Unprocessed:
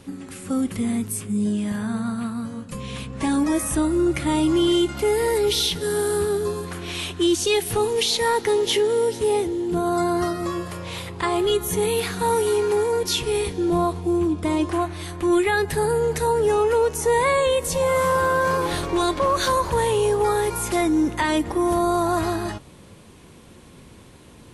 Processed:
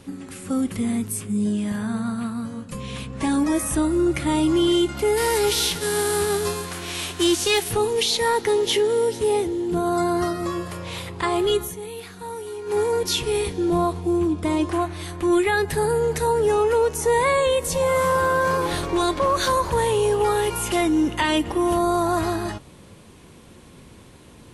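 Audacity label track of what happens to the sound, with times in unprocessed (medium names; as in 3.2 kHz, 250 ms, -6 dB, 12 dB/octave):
5.160000	7.680000	formants flattened exponent 0.6
11.610000	12.780000	dip -12.5 dB, fades 0.13 s
20.110000	21.770000	peaking EQ 2.9 kHz +12.5 dB 0.25 oct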